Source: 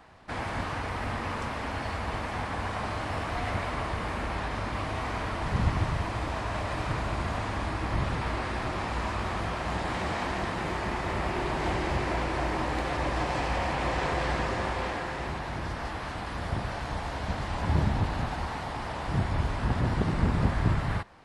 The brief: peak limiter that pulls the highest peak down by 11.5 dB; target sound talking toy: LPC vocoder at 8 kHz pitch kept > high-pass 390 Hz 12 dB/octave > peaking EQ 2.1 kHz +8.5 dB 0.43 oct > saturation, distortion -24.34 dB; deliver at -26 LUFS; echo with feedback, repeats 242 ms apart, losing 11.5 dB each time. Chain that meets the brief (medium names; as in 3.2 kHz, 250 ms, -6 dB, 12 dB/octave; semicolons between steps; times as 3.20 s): peak limiter -23.5 dBFS; feedback delay 242 ms, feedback 27%, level -11.5 dB; LPC vocoder at 8 kHz pitch kept; high-pass 390 Hz 12 dB/octave; peaking EQ 2.1 kHz +8.5 dB 0.43 oct; saturation -23 dBFS; trim +8 dB